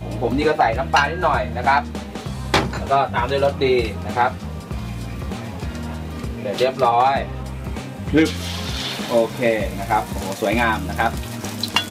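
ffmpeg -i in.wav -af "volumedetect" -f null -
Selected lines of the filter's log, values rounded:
mean_volume: -20.9 dB
max_volume: -5.9 dB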